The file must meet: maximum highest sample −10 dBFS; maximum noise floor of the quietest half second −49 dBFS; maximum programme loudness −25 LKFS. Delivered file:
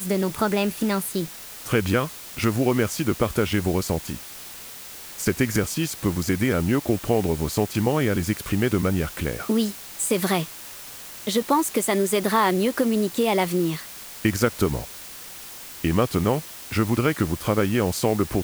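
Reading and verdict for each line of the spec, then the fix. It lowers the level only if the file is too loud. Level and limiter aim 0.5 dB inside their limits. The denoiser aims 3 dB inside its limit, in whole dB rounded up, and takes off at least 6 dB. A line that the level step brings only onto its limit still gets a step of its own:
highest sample −7.5 dBFS: out of spec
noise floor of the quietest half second −40 dBFS: out of spec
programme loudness −23.5 LKFS: out of spec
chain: broadband denoise 10 dB, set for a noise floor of −40 dBFS
level −2 dB
brickwall limiter −10.5 dBFS

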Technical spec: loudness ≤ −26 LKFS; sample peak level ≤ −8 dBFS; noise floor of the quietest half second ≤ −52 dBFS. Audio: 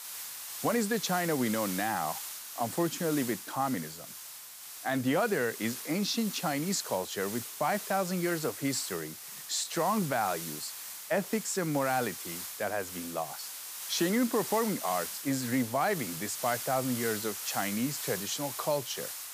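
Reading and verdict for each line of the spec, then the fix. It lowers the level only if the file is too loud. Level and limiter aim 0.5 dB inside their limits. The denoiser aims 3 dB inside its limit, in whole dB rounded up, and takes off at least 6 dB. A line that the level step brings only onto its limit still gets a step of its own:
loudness −31.5 LKFS: in spec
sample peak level −16.5 dBFS: in spec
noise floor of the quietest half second −46 dBFS: out of spec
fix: broadband denoise 9 dB, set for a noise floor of −46 dBFS

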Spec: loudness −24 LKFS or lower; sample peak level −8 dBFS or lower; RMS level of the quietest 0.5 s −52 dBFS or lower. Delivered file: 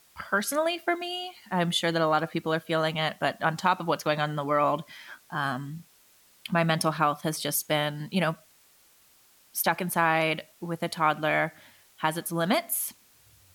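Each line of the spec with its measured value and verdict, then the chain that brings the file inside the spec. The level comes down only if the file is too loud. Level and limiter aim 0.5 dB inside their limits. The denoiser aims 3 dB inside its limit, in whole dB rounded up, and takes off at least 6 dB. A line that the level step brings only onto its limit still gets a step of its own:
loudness −27.5 LKFS: in spec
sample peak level −10.0 dBFS: in spec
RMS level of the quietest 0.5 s −60 dBFS: in spec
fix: no processing needed

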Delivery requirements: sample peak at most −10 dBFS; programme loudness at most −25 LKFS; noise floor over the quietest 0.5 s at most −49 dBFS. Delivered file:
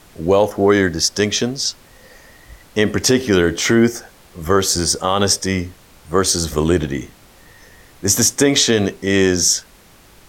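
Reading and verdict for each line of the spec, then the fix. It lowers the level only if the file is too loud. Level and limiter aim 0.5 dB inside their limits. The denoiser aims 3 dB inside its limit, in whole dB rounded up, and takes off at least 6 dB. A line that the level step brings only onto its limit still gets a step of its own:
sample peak −2.5 dBFS: out of spec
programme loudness −16.5 LKFS: out of spec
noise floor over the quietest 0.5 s −47 dBFS: out of spec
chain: level −9 dB

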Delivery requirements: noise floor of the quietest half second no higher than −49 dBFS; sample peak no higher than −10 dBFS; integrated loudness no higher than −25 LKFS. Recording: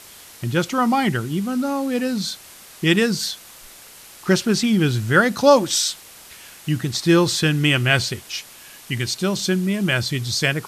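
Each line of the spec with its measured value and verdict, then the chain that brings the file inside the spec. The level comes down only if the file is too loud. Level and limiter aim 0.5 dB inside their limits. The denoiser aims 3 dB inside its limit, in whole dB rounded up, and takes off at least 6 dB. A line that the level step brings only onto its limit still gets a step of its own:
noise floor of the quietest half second −44 dBFS: out of spec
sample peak −2.5 dBFS: out of spec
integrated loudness −20.0 LKFS: out of spec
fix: level −5.5 dB
brickwall limiter −10.5 dBFS

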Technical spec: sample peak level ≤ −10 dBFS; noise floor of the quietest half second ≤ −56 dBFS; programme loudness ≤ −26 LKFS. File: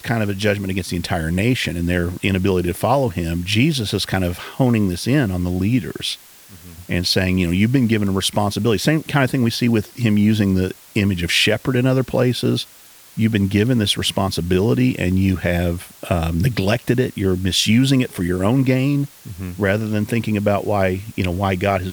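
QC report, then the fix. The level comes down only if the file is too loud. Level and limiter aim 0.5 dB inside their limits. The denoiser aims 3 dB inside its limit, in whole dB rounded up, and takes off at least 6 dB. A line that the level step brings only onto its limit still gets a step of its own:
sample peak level −4.0 dBFS: out of spec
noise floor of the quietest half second −45 dBFS: out of spec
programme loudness −19.0 LKFS: out of spec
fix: broadband denoise 7 dB, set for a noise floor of −45 dBFS
level −7.5 dB

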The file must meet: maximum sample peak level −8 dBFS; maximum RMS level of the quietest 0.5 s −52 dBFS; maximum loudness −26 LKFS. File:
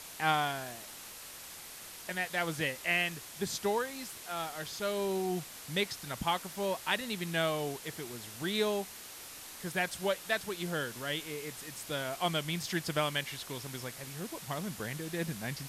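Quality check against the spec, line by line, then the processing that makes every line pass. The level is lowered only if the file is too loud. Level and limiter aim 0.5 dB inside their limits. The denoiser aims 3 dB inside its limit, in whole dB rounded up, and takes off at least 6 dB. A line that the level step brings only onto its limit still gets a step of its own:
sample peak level −14.0 dBFS: in spec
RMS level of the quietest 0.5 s −48 dBFS: out of spec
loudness −35.0 LKFS: in spec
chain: broadband denoise 7 dB, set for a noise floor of −48 dBFS

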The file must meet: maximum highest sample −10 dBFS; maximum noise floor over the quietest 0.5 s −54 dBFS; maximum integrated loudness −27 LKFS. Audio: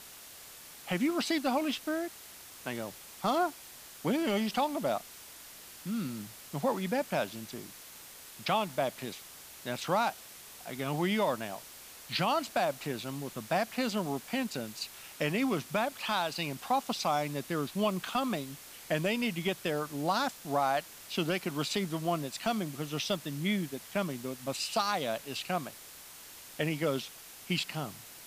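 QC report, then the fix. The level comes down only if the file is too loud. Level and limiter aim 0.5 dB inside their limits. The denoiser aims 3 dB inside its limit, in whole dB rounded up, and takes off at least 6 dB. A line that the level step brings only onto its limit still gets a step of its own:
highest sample −18.0 dBFS: in spec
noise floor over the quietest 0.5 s −50 dBFS: out of spec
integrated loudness −33.0 LKFS: in spec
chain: broadband denoise 7 dB, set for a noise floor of −50 dBFS

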